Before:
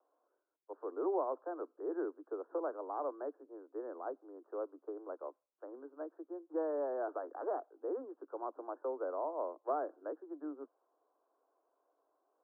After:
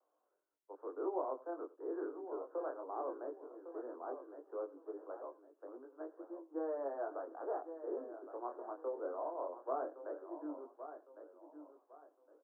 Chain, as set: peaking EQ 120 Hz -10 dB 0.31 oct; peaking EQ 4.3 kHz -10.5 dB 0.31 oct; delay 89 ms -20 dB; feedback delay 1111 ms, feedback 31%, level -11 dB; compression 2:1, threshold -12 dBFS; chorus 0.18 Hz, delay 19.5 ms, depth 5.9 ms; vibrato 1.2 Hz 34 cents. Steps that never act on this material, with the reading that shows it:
peaking EQ 120 Hz: input has nothing below 240 Hz; peaking EQ 4.3 kHz: input has nothing above 1.6 kHz; compression, threshold -12 dBFS: peak at its input -23.5 dBFS

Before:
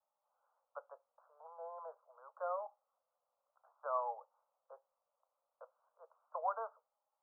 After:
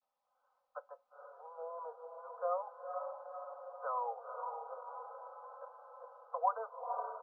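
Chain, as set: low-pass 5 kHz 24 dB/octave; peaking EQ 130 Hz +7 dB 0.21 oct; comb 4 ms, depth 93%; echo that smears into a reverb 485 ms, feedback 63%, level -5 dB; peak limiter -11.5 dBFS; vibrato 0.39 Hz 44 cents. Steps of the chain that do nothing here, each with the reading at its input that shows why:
low-pass 5 kHz: input has nothing above 1.6 kHz; peaking EQ 130 Hz: input has nothing below 430 Hz; peak limiter -11.5 dBFS: peak at its input -19.5 dBFS

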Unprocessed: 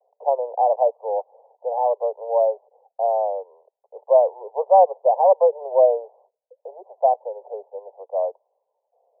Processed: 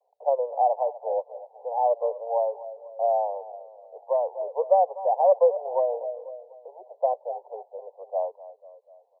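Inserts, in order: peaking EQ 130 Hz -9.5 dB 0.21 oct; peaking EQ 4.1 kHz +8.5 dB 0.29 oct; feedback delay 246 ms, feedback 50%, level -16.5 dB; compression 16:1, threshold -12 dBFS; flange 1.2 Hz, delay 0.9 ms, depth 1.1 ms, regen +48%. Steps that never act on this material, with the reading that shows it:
peaking EQ 130 Hz: input has nothing below 380 Hz; peaking EQ 4.1 kHz: input has nothing above 1.1 kHz

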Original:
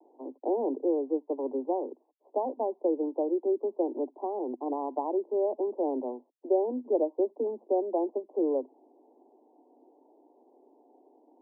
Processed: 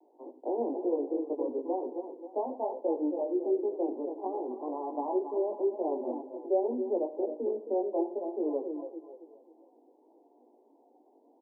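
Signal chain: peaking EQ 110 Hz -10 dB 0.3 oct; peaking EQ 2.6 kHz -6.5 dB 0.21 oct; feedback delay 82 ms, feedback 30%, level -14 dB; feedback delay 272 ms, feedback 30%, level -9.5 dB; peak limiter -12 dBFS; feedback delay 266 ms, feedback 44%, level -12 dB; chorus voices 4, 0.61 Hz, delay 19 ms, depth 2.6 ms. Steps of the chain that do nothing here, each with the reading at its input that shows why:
peaking EQ 110 Hz: input has nothing below 200 Hz; peaking EQ 2.6 kHz: input has nothing above 1 kHz; peak limiter -12 dBFS: peak at its input -15.0 dBFS

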